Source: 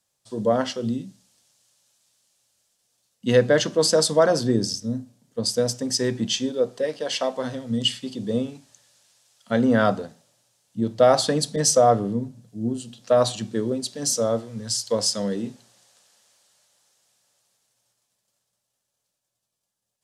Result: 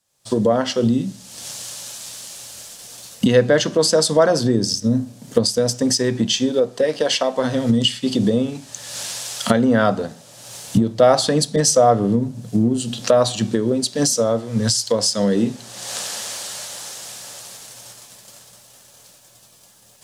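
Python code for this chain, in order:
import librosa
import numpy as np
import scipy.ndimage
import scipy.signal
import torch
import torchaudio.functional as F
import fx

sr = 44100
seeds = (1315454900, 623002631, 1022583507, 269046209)

p1 = fx.recorder_agc(x, sr, target_db=-12.5, rise_db_per_s=46.0, max_gain_db=30)
p2 = np.sign(p1) * np.maximum(np.abs(p1) - 10.0 ** (-40.5 / 20.0), 0.0)
p3 = p1 + (p2 * 10.0 ** (-12.0 / 20.0))
y = p3 * 10.0 ** (1.0 / 20.0)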